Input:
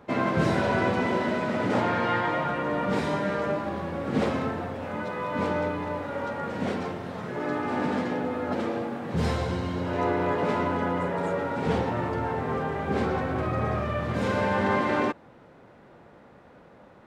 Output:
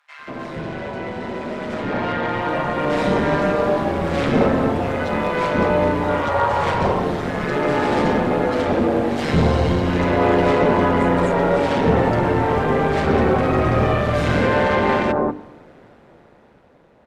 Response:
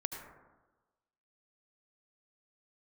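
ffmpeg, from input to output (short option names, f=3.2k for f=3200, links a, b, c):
-filter_complex "[0:a]bandreject=f=50:t=h:w=6,bandreject=f=100:t=h:w=6,bandreject=f=150:t=h:w=6,bandreject=f=200:t=h:w=6,bandreject=f=250:t=h:w=6,bandreject=f=300:t=h:w=6,tremolo=f=150:d=0.71,asettb=1/sr,asplit=3[a][b][c];[a]atrim=end=6.094[d];[b]atrim=start=6.09:end=6.81,asetpts=PTS-STARTPTS,afade=t=in:d=0.004:c=qsin,afade=t=out:st=0.716:d=0.004:c=qsin,equalizer=f=100:t=o:w=0.67:g=8,equalizer=f=250:t=o:w=0.67:g=-11,equalizer=f=1k:t=o:w=0.67:g=10[e];[c]atrim=start=6.806[f];[d][e]acrossfade=d=0.004:c1=hsin:c2=qsin[g];[g][f]acrossfade=d=0.004:c1=qsin:c2=hsin,asoftclip=type=tanh:threshold=-22.5dB,acrossover=split=260|3600[h][i][j];[j]alimiter=level_in=21.5dB:limit=-24dB:level=0:latency=1:release=404,volume=-21.5dB[k];[h][i][k]amix=inputs=3:normalize=0,acrossover=split=1200[l][m];[l]adelay=190[n];[n][m]amix=inputs=2:normalize=0,dynaudnorm=f=450:g=11:m=15dB,asplit=2[o][p];[1:a]atrim=start_sample=2205[q];[p][q]afir=irnorm=-1:irlink=0,volume=-17dB[r];[o][r]amix=inputs=2:normalize=0,aresample=32000,aresample=44100"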